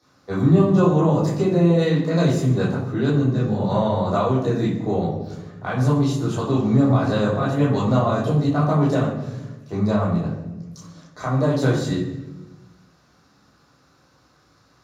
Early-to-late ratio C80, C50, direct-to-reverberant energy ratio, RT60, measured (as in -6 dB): 6.0 dB, 3.0 dB, -8.0 dB, 1.1 s